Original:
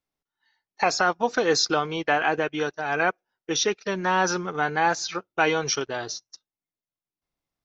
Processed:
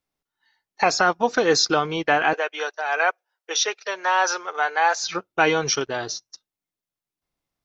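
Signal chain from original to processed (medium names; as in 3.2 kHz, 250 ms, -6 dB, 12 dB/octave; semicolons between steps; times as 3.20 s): 2.33–5.03 s: high-pass 520 Hz 24 dB/octave; trim +3 dB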